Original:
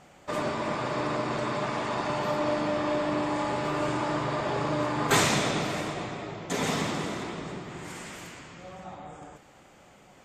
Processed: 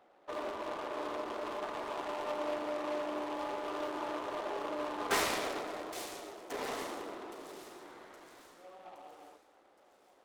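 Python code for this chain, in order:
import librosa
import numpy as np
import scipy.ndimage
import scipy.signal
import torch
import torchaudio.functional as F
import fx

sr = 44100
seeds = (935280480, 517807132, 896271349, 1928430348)

y = fx.wiener(x, sr, points=15)
y = scipy.signal.sosfilt(scipy.signal.butter(4, 320.0, 'highpass', fs=sr, output='sos'), y)
y = fx.echo_wet_highpass(y, sr, ms=818, feedback_pct=47, hz=3900.0, wet_db=-7.5)
y = fx.noise_mod_delay(y, sr, seeds[0], noise_hz=1700.0, depth_ms=0.04)
y = F.gain(torch.from_numpy(y), -7.0).numpy()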